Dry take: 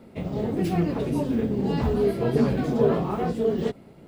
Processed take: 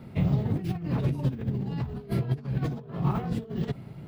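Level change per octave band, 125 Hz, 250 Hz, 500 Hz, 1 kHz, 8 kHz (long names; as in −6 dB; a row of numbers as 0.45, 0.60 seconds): +2.0 dB, −6.0 dB, −14.0 dB, −7.5 dB, can't be measured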